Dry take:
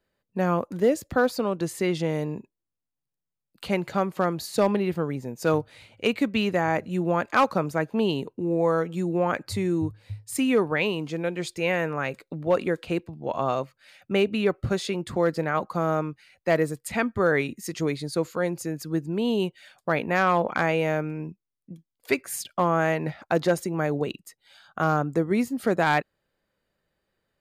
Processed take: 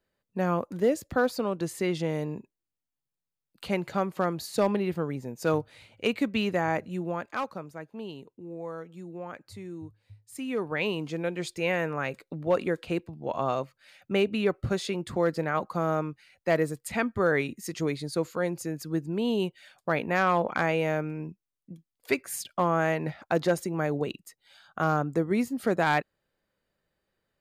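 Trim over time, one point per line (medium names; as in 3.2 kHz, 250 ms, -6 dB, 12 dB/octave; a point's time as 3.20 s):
6.72 s -3 dB
7.70 s -15 dB
10.24 s -15 dB
10.90 s -2.5 dB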